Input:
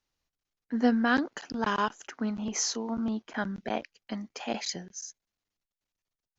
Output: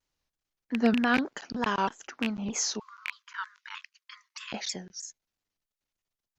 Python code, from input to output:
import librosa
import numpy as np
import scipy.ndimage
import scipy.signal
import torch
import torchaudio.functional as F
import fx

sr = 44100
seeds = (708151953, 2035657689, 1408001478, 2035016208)

y = fx.rattle_buzz(x, sr, strikes_db=-30.0, level_db=-16.0)
y = fx.brickwall_highpass(y, sr, low_hz=960.0, at=(2.79, 4.53))
y = fx.vibrato_shape(y, sr, shape='saw_down', rate_hz=3.2, depth_cents=160.0)